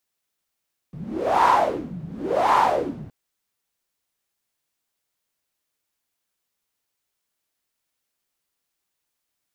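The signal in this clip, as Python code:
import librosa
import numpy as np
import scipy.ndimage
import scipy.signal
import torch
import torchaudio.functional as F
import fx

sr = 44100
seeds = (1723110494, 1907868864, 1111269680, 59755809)

y = fx.wind(sr, seeds[0], length_s=2.17, low_hz=160.0, high_hz=980.0, q=5.8, gusts=2, swing_db=18.5)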